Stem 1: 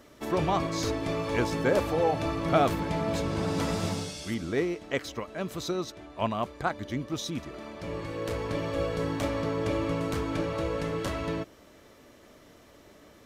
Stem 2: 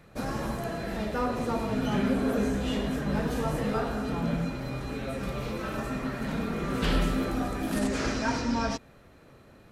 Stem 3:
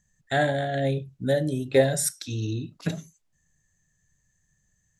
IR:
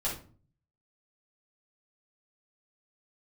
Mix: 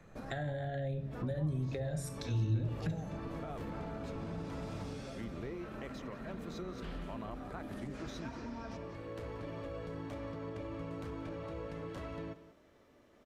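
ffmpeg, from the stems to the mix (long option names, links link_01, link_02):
-filter_complex "[0:a]alimiter=limit=-22.5dB:level=0:latency=1:release=37,adelay=900,volume=-9.5dB,asplit=2[link_01][link_02];[link_02]volume=-16.5dB[link_03];[1:a]acompressor=threshold=-43dB:ratio=2.5,volume=-3.5dB,asplit=2[link_04][link_05];[link_05]volume=-11.5dB[link_06];[2:a]alimiter=limit=-17.5dB:level=0:latency=1,volume=-0.5dB,asplit=3[link_07][link_08][link_09];[link_08]volume=-10.5dB[link_10];[link_09]apad=whole_len=428640[link_11];[link_04][link_11]sidechaincompress=threshold=-33dB:ratio=8:attack=16:release=173[link_12];[3:a]atrim=start_sample=2205[link_13];[link_10][link_13]afir=irnorm=-1:irlink=0[link_14];[link_03][link_06]amix=inputs=2:normalize=0,aecho=0:1:181:1[link_15];[link_01][link_12][link_07][link_14][link_15]amix=inputs=5:normalize=0,highshelf=frequency=3600:gain=-10,acrossover=split=120[link_16][link_17];[link_17]acompressor=threshold=-39dB:ratio=8[link_18];[link_16][link_18]amix=inputs=2:normalize=0"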